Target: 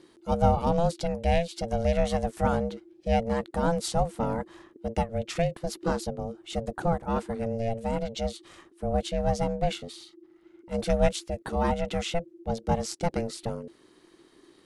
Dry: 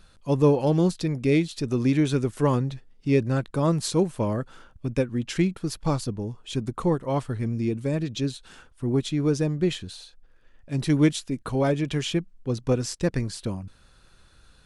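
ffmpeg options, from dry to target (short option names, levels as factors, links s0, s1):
-af "aeval=exprs='val(0)*sin(2*PI*340*n/s)':c=same"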